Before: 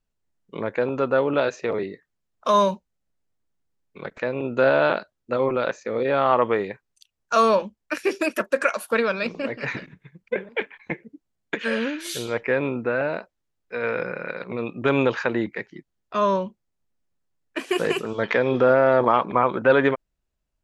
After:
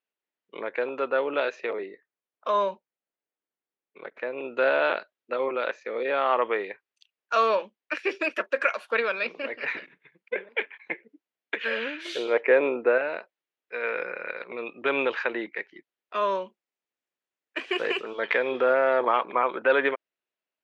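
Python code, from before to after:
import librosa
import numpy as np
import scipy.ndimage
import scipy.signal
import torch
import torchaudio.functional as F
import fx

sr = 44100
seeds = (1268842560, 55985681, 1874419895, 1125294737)

y = fx.high_shelf(x, sr, hz=2000.0, db=-8.5, at=(1.73, 4.38))
y = fx.peak_eq(y, sr, hz=500.0, db=9.0, octaves=2.2, at=(12.05, 12.98))
y = fx.peak_eq(y, sr, hz=7500.0, db=9.0, octaves=0.58, at=(16.31, 17.6))
y = scipy.signal.sosfilt(scipy.signal.cheby1(2, 1.0, [380.0, 2600.0], 'bandpass', fs=sr, output='sos'), y)
y = fx.high_shelf(y, sr, hz=2100.0, db=12.0)
y = y * 10.0 ** (-5.5 / 20.0)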